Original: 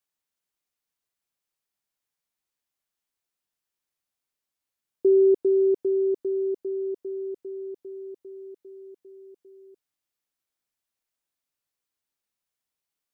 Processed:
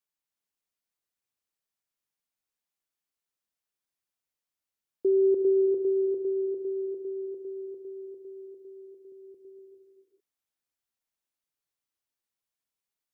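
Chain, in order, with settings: 9.12–9.59 s: bass shelf 240 Hz +11.5 dB; gated-style reverb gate 470 ms rising, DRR 5 dB; trim -5 dB

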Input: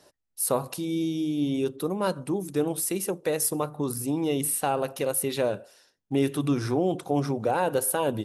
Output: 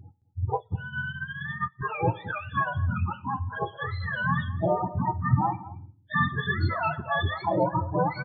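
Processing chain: spectrum inverted on a logarithmic axis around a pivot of 700 Hz; tilt EQ -2 dB/octave; loudest bins only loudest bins 16; 3.22–3.62 s: bass shelf 370 Hz -11 dB; on a send: delay 218 ms -18.5 dB; on the sum: Schroeder reverb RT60 0.45 s, combs from 26 ms, DRR 17 dB; 0.45–1.81 s: upward expansion 2.5:1, over -38 dBFS; trim +2 dB

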